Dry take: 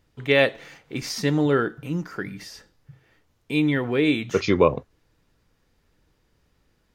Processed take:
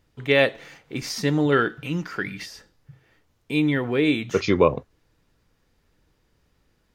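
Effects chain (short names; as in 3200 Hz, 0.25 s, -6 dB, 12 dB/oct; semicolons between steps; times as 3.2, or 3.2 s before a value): 1.52–2.46 bell 2900 Hz +10 dB 1.7 oct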